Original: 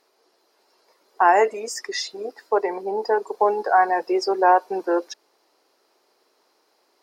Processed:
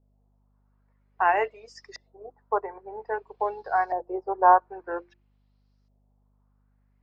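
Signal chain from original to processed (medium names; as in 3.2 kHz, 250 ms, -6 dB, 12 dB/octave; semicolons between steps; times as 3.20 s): tone controls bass -12 dB, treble -4 dB; hum notches 50/100/150/200/250/300/350 Hz; hum 50 Hz, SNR 23 dB; LFO low-pass saw up 0.51 Hz 590–5900 Hz; upward expansion 1.5:1, over -38 dBFS; trim -4.5 dB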